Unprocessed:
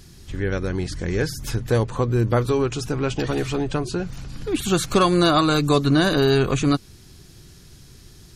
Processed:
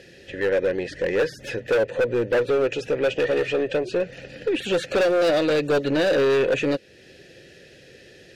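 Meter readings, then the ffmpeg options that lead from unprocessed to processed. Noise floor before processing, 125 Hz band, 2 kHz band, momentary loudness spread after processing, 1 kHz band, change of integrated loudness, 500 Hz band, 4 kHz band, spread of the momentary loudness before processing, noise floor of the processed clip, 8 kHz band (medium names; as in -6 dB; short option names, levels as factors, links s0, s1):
-47 dBFS, -14.0 dB, +1.5 dB, 8 LU, -7.0 dB, -1.5 dB, +3.0 dB, -5.0 dB, 10 LU, -50 dBFS, -10.5 dB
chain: -filter_complex "[0:a]asplit=2[s0][s1];[s1]acompressor=threshold=0.0251:ratio=6,volume=1.06[s2];[s0][s2]amix=inputs=2:normalize=0,asplit=3[s3][s4][s5];[s3]bandpass=f=530:t=q:w=8,volume=1[s6];[s4]bandpass=f=1840:t=q:w=8,volume=0.501[s7];[s5]bandpass=f=2480:t=q:w=8,volume=0.355[s8];[s6][s7][s8]amix=inputs=3:normalize=0,aeval=exprs='0.15*(cos(1*acos(clip(val(0)/0.15,-1,1)))-cos(1*PI/2))+0.0211*(cos(4*acos(clip(val(0)/0.15,-1,1)))-cos(4*PI/2))+0.0299*(cos(5*acos(clip(val(0)/0.15,-1,1)))-cos(5*PI/2))':c=same,asoftclip=type=hard:threshold=0.0631,volume=2.37"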